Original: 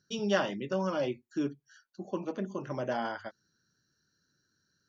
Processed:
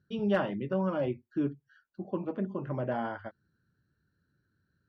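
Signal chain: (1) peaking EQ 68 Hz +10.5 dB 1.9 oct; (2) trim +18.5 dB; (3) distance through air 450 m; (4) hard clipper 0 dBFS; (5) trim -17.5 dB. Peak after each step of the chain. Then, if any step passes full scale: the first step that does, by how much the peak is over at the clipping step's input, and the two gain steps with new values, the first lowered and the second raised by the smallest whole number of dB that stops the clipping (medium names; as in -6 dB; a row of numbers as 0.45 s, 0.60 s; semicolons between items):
-12.5 dBFS, +6.0 dBFS, +3.5 dBFS, 0.0 dBFS, -17.5 dBFS; step 2, 3.5 dB; step 2 +14.5 dB, step 5 -13.5 dB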